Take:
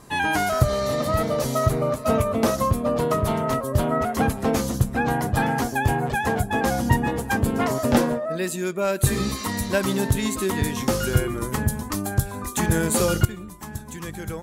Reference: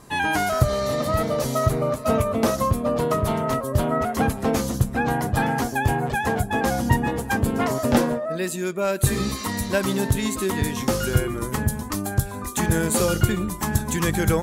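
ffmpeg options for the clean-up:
ffmpeg -i in.wav -af "asetnsamples=nb_out_samples=441:pad=0,asendcmd='13.25 volume volume 11.5dB',volume=0dB" out.wav

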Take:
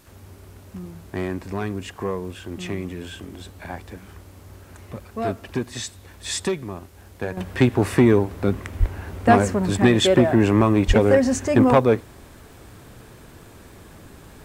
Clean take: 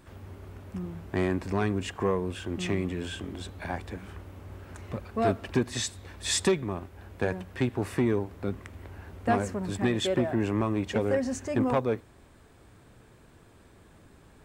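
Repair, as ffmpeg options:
ffmpeg -i in.wav -filter_complex "[0:a]adeclick=threshold=4,asplit=3[link_01][link_02][link_03];[link_01]afade=type=out:start_time=8.79:duration=0.02[link_04];[link_02]highpass=frequency=140:width=0.5412,highpass=frequency=140:width=1.3066,afade=type=in:start_time=8.79:duration=0.02,afade=type=out:start_time=8.91:duration=0.02[link_05];[link_03]afade=type=in:start_time=8.91:duration=0.02[link_06];[link_04][link_05][link_06]amix=inputs=3:normalize=0,asplit=3[link_07][link_08][link_09];[link_07]afade=type=out:start_time=10.87:duration=0.02[link_10];[link_08]highpass=frequency=140:width=0.5412,highpass=frequency=140:width=1.3066,afade=type=in:start_time=10.87:duration=0.02,afade=type=out:start_time=10.99:duration=0.02[link_11];[link_09]afade=type=in:start_time=10.99:duration=0.02[link_12];[link_10][link_11][link_12]amix=inputs=3:normalize=0,agate=range=-21dB:threshold=-38dB,asetnsamples=nb_out_samples=441:pad=0,asendcmd='7.37 volume volume -10.5dB',volume=0dB" out.wav

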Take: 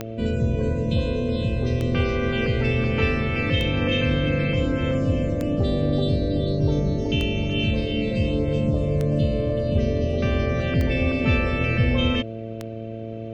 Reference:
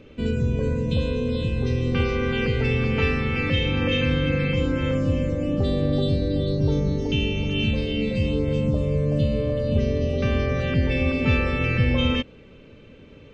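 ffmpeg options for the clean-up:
ffmpeg -i in.wav -af "adeclick=threshold=4,bandreject=frequency=112.1:width_type=h:width=4,bandreject=frequency=224.2:width_type=h:width=4,bandreject=frequency=336.3:width_type=h:width=4,bandreject=frequency=448.4:width_type=h:width=4,bandreject=frequency=560.5:width_type=h:width=4,bandreject=frequency=672.6:width_type=h:width=4" out.wav

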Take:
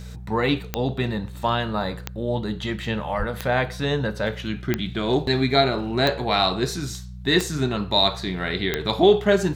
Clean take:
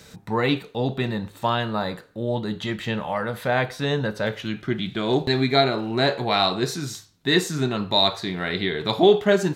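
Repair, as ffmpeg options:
ffmpeg -i in.wav -filter_complex "[0:a]adeclick=threshold=4,bandreject=frequency=61.5:width_type=h:width=4,bandreject=frequency=123:width_type=h:width=4,bandreject=frequency=184.5:width_type=h:width=4,asplit=3[link_01][link_02][link_03];[link_01]afade=type=out:start_time=3.18:duration=0.02[link_04];[link_02]highpass=frequency=140:width=0.5412,highpass=frequency=140:width=1.3066,afade=type=in:start_time=3.18:duration=0.02,afade=type=out:start_time=3.3:duration=0.02[link_05];[link_03]afade=type=in:start_time=3.3:duration=0.02[link_06];[link_04][link_05][link_06]amix=inputs=3:normalize=0" out.wav

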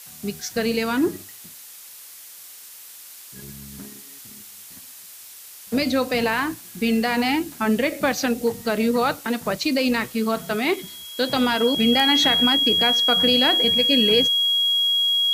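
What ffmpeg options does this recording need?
ffmpeg -i in.wav -af "bandreject=frequency=3300:width=30,afftdn=noise_reduction=25:noise_floor=-42" out.wav

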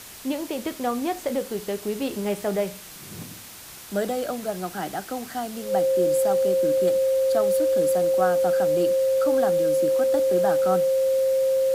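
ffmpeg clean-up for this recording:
ffmpeg -i in.wav -af "bandreject=frequency=530:width=30,afwtdn=0.0089" out.wav

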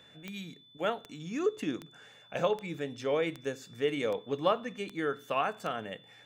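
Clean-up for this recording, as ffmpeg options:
ffmpeg -i in.wav -af "adeclick=threshold=4,bandreject=frequency=3500:width=30" out.wav

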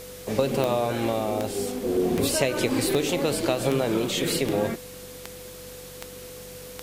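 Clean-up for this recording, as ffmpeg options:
ffmpeg -i in.wav -af "adeclick=threshold=4,bandreject=frequency=47.3:width_type=h:width=4,bandreject=frequency=94.6:width_type=h:width=4,bandreject=frequency=141.9:width_type=h:width=4,bandreject=frequency=189.2:width_type=h:width=4,bandreject=frequency=500:width=30,afwtdn=0.0063" out.wav

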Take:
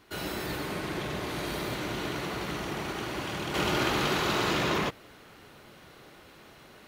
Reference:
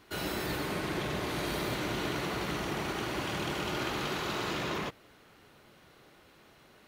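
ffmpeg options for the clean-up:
ffmpeg -i in.wav -af "asetnsamples=nb_out_samples=441:pad=0,asendcmd='3.54 volume volume -6.5dB',volume=0dB" out.wav

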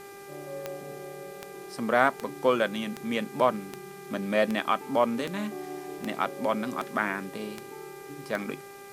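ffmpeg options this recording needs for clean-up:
ffmpeg -i in.wav -af "adeclick=threshold=4,bandreject=frequency=398.5:width_type=h:width=4,bandreject=frequency=797:width_type=h:width=4,bandreject=frequency=1195.5:width_type=h:width=4,bandreject=frequency=1594:width_type=h:width=4,bandreject=frequency=1992.5:width_type=h:width=4,bandreject=frequency=2391:width_type=h:width=4,afwtdn=0.0022" out.wav

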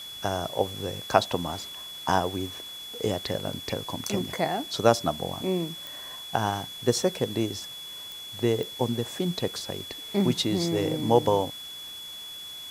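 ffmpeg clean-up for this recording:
ffmpeg -i in.wav -af "adeclick=threshold=4,bandreject=frequency=3400:width=30,afwtdn=0.0045" out.wav

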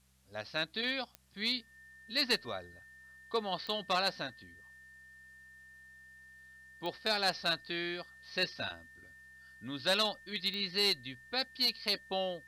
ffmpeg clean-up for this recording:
ffmpeg -i in.wav -af "adeclick=threshold=4,bandreject=frequency=64.9:width_type=h:width=4,bandreject=frequency=129.8:width_type=h:width=4,bandreject=frequency=194.7:width_type=h:width=4,bandreject=frequency=1800:width=30,agate=range=-21dB:threshold=-49dB" out.wav

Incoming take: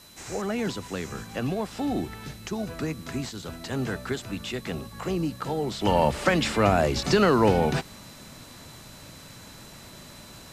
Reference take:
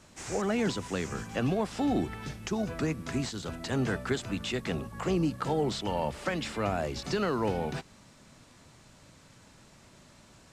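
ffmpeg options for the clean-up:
ffmpeg -i in.wav -af "bandreject=frequency=4000:width=30,agate=range=-21dB:threshold=-38dB,asetnsamples=nb_out_samples=441:pad=0,asendcmd='5.81 volume volume -9.5dB',volume=0dB" out.wav

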